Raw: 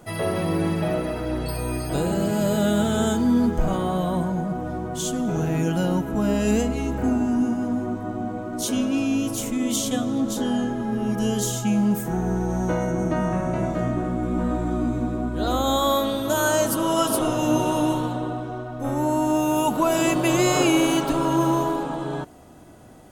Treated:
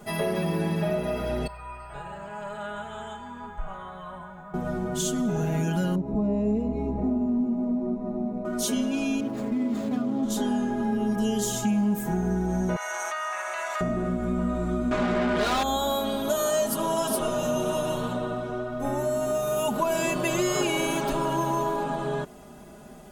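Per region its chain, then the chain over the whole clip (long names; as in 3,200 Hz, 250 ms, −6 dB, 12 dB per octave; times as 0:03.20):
0:01.47–0:04.54: drawn EQ curve 100 Hz 0 dB, 160 Hz −10 dB, 230 Hz −16 dB, 410 Hz −11 dB, 690 Hz −1 dB, 1,100 Hz +8 dB, 2,900 Hz −1 dB, 5,000 Hz −15 dB, 8,300 Hz −10 dB, 13,000 Hz −26 dB + bit-depth reduction 12 bits, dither triangular + tuned comb filter 140 Hz, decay 1.6 s, mix 80%
0:05.95–0:08.45: variable-slope delta modulation 64 kbit/s + moving average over 28 samples
0:09.20–0:10.23: running median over 15 samples + high-pass filter 56 Hz + high-shelf EQ 3,200 Hz −12 dB
0:12.76–0:13.81: high-pass filter 970 Hz 24 dB per octave + envelope flattener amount 100%
0:14.91–0:15.63: low-pass filter 6,200 Hz + mid-hump overdrive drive 30 dB, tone 4,700 Hz, clips at −12.5 dBFS
whole clip: comb filter 4.9 ms, depth 93%; downward compressor 2.5 to 1, threshold −24 dBFS; level −1 dB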